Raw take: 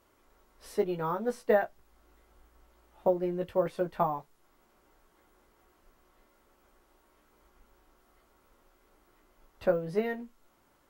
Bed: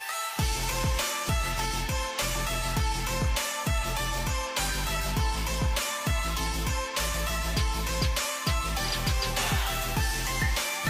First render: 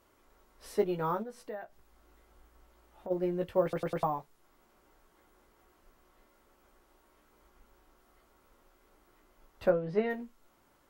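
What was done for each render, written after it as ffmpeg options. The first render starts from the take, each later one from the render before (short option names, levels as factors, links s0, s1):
-filter_complex "[0:a]asplit=3[s0][s1][s2];[s0]afade=t=out:st=1.22:d=0.02[s3];[s1]acompressor=threshold=0.00501:ratio=2.5:attack=3.2:release=140:knee=1:detection=peak,afade=t=in:st=1.22:d=0.02,afade=t=out:st=3.1:d=0.02[s4];[s2]afade=t=in:st=3.1:d=0.02[s5];[s3][s4][s5]amix=inputs=3:normalize=0,asplit=3[s6][s7][s8];[s6]afade=t=out:st=9.69:d=0.02[s9];[s7]lowpass=3900,afade=t=in:st=9.69:d=0.02,afade=t=out:st=10.09:d=0.02[s10];[s8]afade=t=in:st=10.09:d=0.02[s11];[s9][s10][s11]amix=inputs=3:normalize=0,asplit=5[s12][s13][s14][s15][s16];[s12]atrim=end=3.732[s17];[s13]atrim=start=3.628:end=3.732[s18];[s14]atrim=start=3.628:end=3.732[s19];[s15]atrim=start=3.628:end=3.732[s20];[s16]atrim=start=4.028[s21];[s17][s18]acrossfade=d=0.004:c1=hsin:c2=hsin[s22];[s22][s19]acrossfade=d=0.004:c1=hsin:c2=hsin[s23];[s23][s20]acrossfade=d=0.004:c1=hsin:c2=hsin[s24];[s24][s21]acrossfade=d=0.004:c1=hsin:c2=hsin"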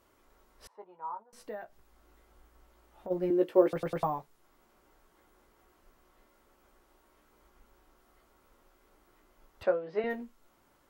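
-filter_complex "[0:a]asettb=1/sr,asplit=3[s0][s1][s2];[s0]atrim=end=0.674[s3];[s1]atrim=start=0.67:end=1.33,asetpts=PTS-STARTPTS,afade=t=in:d=0.004:c=qsin,afade=t=out:st=0.656:d=0.004:c=qsin,bandpass=f=940:t=q:w=7.8[s4];[s2]atrim=start=1.326[s5];[s3][s4]acrossfade=d=0.004:c1=hsin:c2=qsin[s6];[s6][s5]acrossfade=d=0.004:c1=qsin:c2=hsin,asettb=1/sr,asplit=3[s7][s8][s9];[s7]atrim=end=3.304[s10];[s8]atrim=start=3.3:end=3.73,asetpts=PTS-STARTPTS,afade=t=in:d=0.004:c=qsin,afade=t=out:st=0.426:d=0.004:c=qsin,highpass=f=330:t=q:w=3.2[s11];[s9]atrim=start=3.726[s12];[s10][s11]acrossfade=d=0.004:c1=hsin:c2=qsin[s13];[s13][s12]acrossfade=d=0.004:c1=qsin:c2=hsin,asettb=1/sr,asplit=3[s14][s15][s16];[s14]atrim=end=9.634[s17];[s15]atrim=start=9.63:end=10.04,asetpts=PTS-STARTPTS,afade=t=in:d=0.004:c=qsin,afade=t=out:st=0.406:d=0.004:c=qsin,highpass=390,lowpass=5200[s18];[s16]atrim=start=10.036[s19];[s17][s18]acrossfade=d=0.004:c1=hsin:c2=qsin[s20];[s20][s19]acrossfade=d=0.004:c1=qsin:c2=hsin"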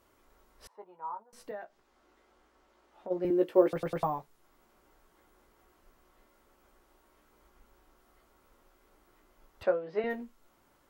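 -filter_complex "[0:a]asettb=1/sr,asplit=3[s0][s1][s2];[s0]atrim=end=1.514[s3];[s1]atrim=start=1.51:end=3.25,asetpts=PTS-STARTPTS,afade=t=in:d=0.004:c=qsin,afade=t=out:st=1.736:d=0.004:c=qsin,acrossover=split=190 7400:gain=0.2 1 0.224[s4][s5][s6];[s4][s5][s6]amix=inputs=3:normalize=0[s7];[s2]atrim=start=3.246[s8];[s3][s7]acrossfade=d=0.004:c1=hsin:c2=qsin[s9];[s9][s8]acrossfade=d=0.004:c1=qsin:c2=hsin"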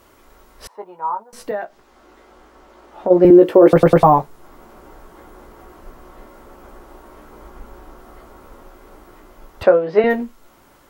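-filter_complex "[0:a]acrossover=split=1400[s0][s1];[s0]dynaudnorm=f=490:g=11:m=3.16[s2];[s2][s1]amix=inputs=2:normalize=0,alimiter=level_in=5.96:limit=0.891:release=50:level=0:latency=1"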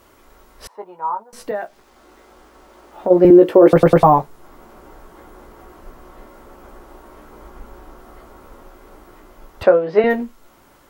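-filter_complex "[0:a]asettb=1/sr,asplit=3[s0][s1][s2];[s0]atrim=end=1.554[s3];[s1]atrim=start=1.55:end=3.35,asetpts=PTS-STARTPTS,afade=t=in:d=0.004:c=qsin,afade=t=out:st=1.796:d=0.004:c=qsin,acrusher=bits=8:mix=0:aa=0.5[s4];[s2]atrim=start=3.346[s5];[s3][s4]acrossfade=d=0.004:c1=hsin:c2=qsin[s6];[s6][s5]acrossfade=d=0.004:c1=qsin:c2=hsin"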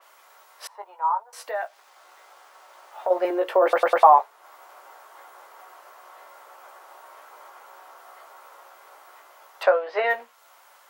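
-af "highpass=f=650:w=0.5412,highpass=f=650:w=1.3066,adynamicequalizer=threshold=0.00708:dfrequency=4000:dqfactor=0.7:tfrequency=4000:tqfactor=0.7:attack=5:release=100:ratio=0.375:range=3.5:mode=cutabove:tftype=highshelf"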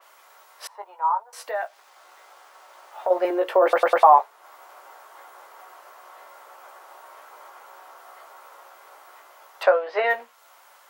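-af "volume=1.12,alimiter=limit=0.708:level=0:latency=1"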